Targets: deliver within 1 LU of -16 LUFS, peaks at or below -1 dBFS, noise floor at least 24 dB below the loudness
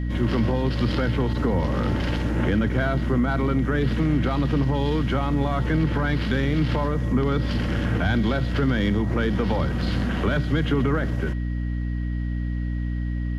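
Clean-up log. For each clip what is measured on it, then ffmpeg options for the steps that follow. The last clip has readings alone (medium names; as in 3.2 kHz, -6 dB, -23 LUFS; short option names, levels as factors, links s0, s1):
hum 60 Hz; highest harmonic 300 Hz; hum level -23 dBFS; steady tone 1.9 kHz; tone level -45 dBFS; loudness -24.0 LUFS; peak level -10.5 dBFS; loudness target -16.0 LUFS
-> -af "bandreject=f=60:t=h:w=4,bandreject=f=120:t=h:w=4,bandreject=f=180:t=h:w=4,bandreject=f=240:t=h:w=4,bandreject=f=300:t=h:w=4"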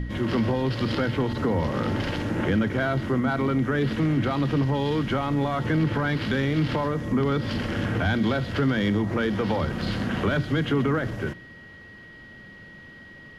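hum not found; steady tone 1.9 kHz; tone level -45 dBFS
-> -af "bandreject=f=1900:w=30"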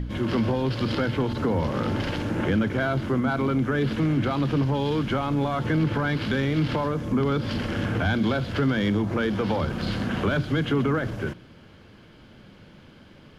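steady tone not found; loudness -25.0 LUFS; peak level -13.0 dBFS; loudness target -16.0 LUFS
-> -af "volume=2.82"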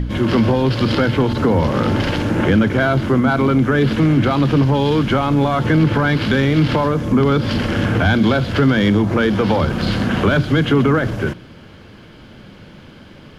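loudness -16.0 LUFS; peak level -4.0 dBFS; noise floor -41 dBFS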